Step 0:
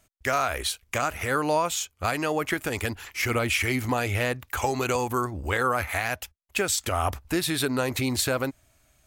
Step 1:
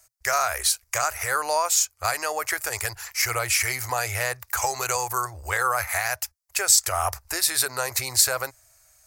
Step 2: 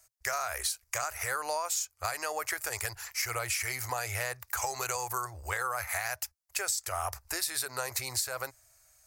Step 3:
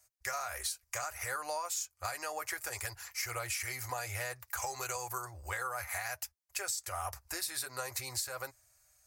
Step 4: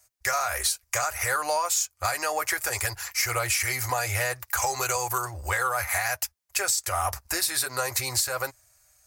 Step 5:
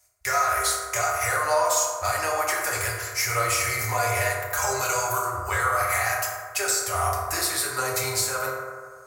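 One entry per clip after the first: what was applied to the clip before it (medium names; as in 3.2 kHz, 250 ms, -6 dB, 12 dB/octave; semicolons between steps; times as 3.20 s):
FFT filter 120 Hz 0 dB, 180 Hz -30 dB, 400 Hz -3 dB, 690 Hz +6 dB, 1.9 kHz +8 dB, 3.3 kHz -1 dB, 4.8 kHz +15 dB; trim -5 dB
compression 12:1, threshold -23 dBFS, peak gain reduction 11.5 dB; trim -5 dB
comb of notches 220 Hz; trim -3.5 dB
waveshaping leveller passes 1; trim +8 dB
reverberation RT60 1.8 s, pre-delay 4 ms, DRR -4 dB; trim -2.5 dB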